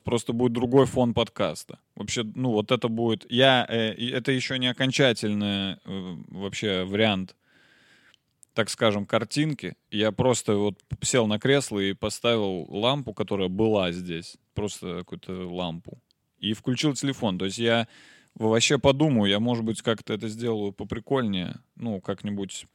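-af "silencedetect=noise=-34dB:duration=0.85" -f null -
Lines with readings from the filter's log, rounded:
silence_start: 7.30
silence_end: 8.43 | silence_duration: 1.13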